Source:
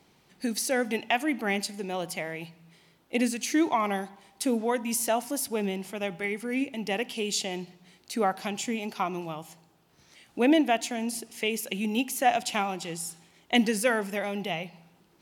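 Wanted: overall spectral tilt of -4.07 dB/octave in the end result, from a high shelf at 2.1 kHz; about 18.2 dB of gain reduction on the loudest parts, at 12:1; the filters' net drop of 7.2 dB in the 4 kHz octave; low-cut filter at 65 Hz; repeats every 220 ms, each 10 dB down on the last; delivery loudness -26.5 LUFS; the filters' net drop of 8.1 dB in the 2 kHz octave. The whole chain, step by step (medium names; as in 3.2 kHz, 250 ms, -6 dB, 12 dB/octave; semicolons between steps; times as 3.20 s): high-pass 65 Hz; peaking EQ 2 kHz -7 dB; treble shelf 2.1 kHz -3.5 dB; peaking EQ 4 kHz -3.5 dB; compression 12:1, threshold -37 dBFS; feedback delay 220 ms, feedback 32%, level -10 dB; trim +15 dB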